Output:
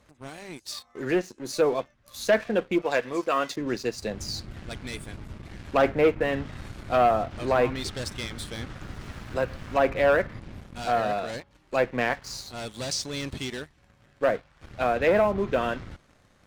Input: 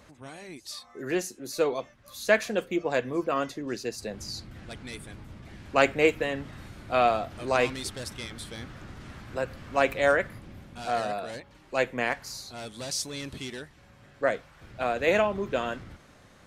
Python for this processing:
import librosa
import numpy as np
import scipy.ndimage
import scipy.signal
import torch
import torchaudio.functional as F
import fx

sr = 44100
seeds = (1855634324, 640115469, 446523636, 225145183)

y = fx.riaa(x, sr, side='recording', at=(2.82, 3.56))
y = fx.env_lowpass_down(y, sr, base_hz=1600.0, full_db=-21.0)
y = fx.low_shelf(y, sr, hz=66.0, db=6.5)
y = fx.leveller(y, sr, passes=2)
y = fx.sample_gate(y, sr, floor_db=-49.5, at=(8.82, 9.74))
y = y * 10.0 ** (-3.5 / 20.0)